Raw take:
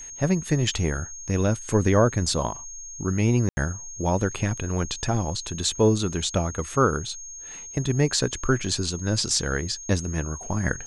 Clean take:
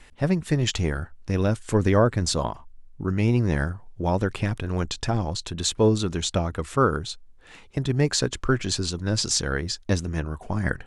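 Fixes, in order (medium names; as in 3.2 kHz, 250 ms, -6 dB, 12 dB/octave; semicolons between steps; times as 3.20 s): band-stop 6.5 kHz, Q 30; room tone fill 3.49–3.57 s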